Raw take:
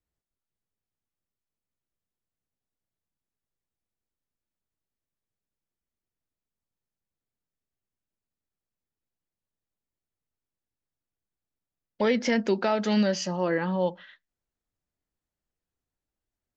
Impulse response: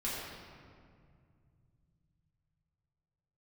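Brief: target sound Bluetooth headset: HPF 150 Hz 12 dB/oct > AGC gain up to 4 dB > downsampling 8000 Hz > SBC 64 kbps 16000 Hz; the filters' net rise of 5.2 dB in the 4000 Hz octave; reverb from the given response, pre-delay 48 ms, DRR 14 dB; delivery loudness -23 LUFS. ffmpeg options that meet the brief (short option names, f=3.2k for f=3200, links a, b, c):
-filter_complex "[0:a]equalizer=f=4k:t=o:g=7,asplit=2[a][b];[1:a]atrim=start_sample=2205,adelay=48[c];[b][c]afir=irnorm=-1:irlink=0,volume=-18.5dB[d];[a][d]amix=inputs=2:normalize=0,highpass=150,dynaudnorm=m=4dB,aresample=8000,aresample=44100,volume=3dB" -ar 16000 -c:a sbc -b:a 64k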